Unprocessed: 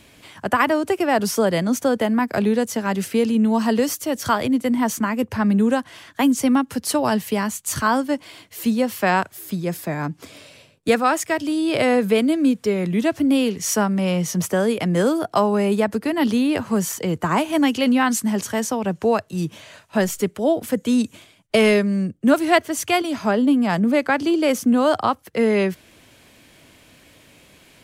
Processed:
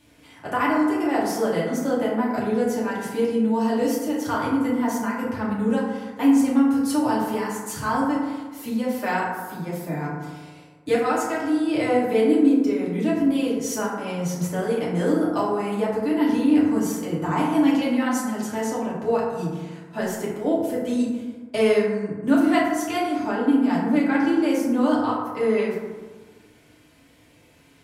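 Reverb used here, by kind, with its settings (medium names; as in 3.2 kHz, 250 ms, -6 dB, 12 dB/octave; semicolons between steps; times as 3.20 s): FDN reverb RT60 1.4 s, low-frequency decay 1.05×, high-frequency decay 0.35×, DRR -7 dB; trim -12.5 dB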